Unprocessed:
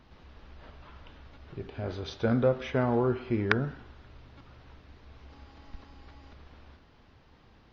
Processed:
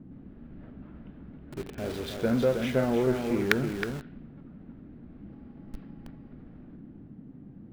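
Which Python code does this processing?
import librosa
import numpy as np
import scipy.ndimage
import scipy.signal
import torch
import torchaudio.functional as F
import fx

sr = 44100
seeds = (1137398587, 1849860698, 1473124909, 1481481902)

p1 = fx.peak_eq(x, sr, hz=1000.0, db=-10.0, octaves=0.69)
p2 = p1 + fx.echo_single(p1, sr, ms=317, db=-7.0, dry=0)
p3 = fx.env_lowpass(p2, sr, base_hz=950.0, full_db=-27.0)
p4 = fx.quant_companded(p3, sr, bits=2)
p5 = p3 + (p4 * 10.0 ** (-11.5 / 20.0))
p6 = fx.dmg_noise_band(p5, sr, seeds[0], low_hz=85.0, high_hz=280.0, level_db=-45.0)
y = fx.peak_eq(p6, sr, hz=100.0, db=-10.5, octaves=0.67)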